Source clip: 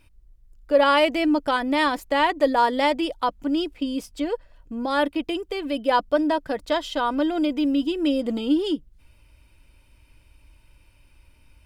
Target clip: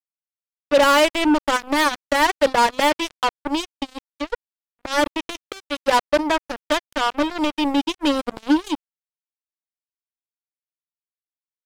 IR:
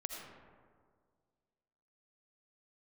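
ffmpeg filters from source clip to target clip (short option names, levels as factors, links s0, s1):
-filter_complex "[0:a]asplit=2[s0][s1];[s1]asoftclip=type=tanh:threshold=0.141,volume=0.398[s2];[s0][s2]amix=inputs=2:normalize=0,acrusher=bits=2:mix=0:aa=0.5"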